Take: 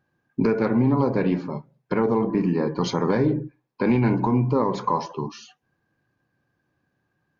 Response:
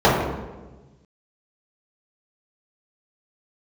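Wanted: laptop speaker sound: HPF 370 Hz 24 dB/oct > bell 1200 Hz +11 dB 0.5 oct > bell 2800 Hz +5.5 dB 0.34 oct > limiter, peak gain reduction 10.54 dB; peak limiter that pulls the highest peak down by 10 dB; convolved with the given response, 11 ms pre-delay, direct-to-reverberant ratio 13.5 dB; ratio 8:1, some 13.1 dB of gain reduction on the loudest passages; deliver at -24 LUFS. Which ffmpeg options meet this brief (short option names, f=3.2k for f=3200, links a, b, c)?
-filter_complex "[0:a]acompressor=threshold=-30dB:ratio=8,alimiter=level_in=3.5dB:limit=-24dB:level=0:latency=1,volume=-3.5dB,asplit=2[a][b];[1:a]atrim=start_sample=2205,adelay=11[c];[b][c]afir=irnorm=-1:irlink=0,volume=-40dB[d];[a][d]amix=inputs=2:normalize=0,highpass=f=370:w=0.5412,highpass=f=370:w=1.3066,equalizer=f=1.2k:t=o:w=0.5:g=11,equalizer=f=2.8k:t=o:w=0.34:g=5.5,volume=19dB,alimiter=limit=-14dB:level=0:latency=1"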